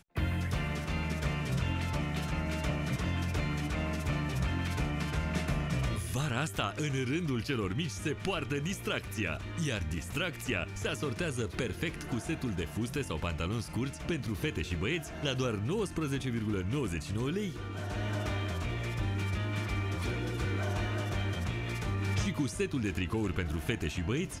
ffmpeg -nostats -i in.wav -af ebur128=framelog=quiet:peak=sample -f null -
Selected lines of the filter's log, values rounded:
Integrated loudness:
  I:         -33.8 LUFS
  Threshold: -43.8 LUFS
Loudness range:
  LRA:         1.7 LU
  Threshold: -53.9 LUFS
  LRA low:   -34.7 LUFS
  LRA high:  -33.1 LUFS
Sample peak:
  Peak:      -15.4 dBFS